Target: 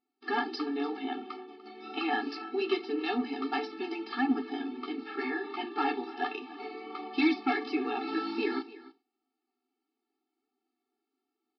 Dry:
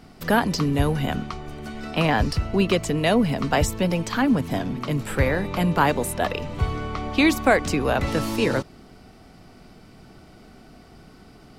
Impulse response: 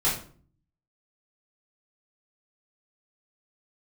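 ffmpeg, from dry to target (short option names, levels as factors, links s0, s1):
-filter_complex "[0:a]agate=range=0.0447:threshold=0.02:ratio=16:detection=peak,flanger=delay=8.4:depth=7:regen=-28:speed=1.4:shape=sinusoidal,aresample=11025,volume=6.68,asoftclip=hard,volume=0.15,aresample=44100,aecho=1:1:294:0.119,asplit=2[s0][s1];[1:a]atrim=start_sample=2205,afade=t=out:st=0.13:d=0.01,atrim=end_sample=6174[s2];[s1][s2]afir=irnorm=-1:irlink=0,volume=0.0944[s3];[s0][s3]amix=inputs=2:normalize=0,afftfilt=real='re*eq(mod(floor(b*sr/1024/230),2),1)':imag='im*eq(mod(floor(b*sr/1024/230),2),1)':win_size=1024:overlap=0.75,volume=0.75"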